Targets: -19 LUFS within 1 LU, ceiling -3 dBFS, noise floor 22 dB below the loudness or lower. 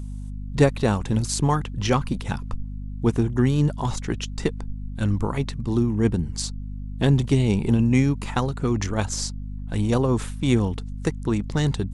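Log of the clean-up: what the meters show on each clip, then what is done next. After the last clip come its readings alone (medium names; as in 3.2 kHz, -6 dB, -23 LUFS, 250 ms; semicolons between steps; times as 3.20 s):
hum 50 Hz; highest harmonic 250 Hz; hum level -29 dBFS; loudness -23.5 LUFS; peak level -4.5 dBFS; loudness target -19.0 LUFS
-> de-hum 50 Hz, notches 5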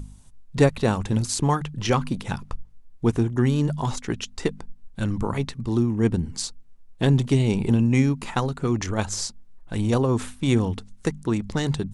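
hum not found; loudness -24.5 LUFS; peak level -6.0 dBFS; loudness target -19.0 LUFS
-> trim +5.5 dB; peak limiter -3 dBFS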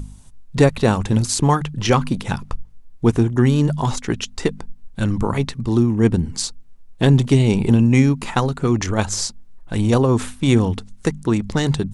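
loudness -19.0 LUFS; peak level -3.0 dBFS; noise floor -42 dBFS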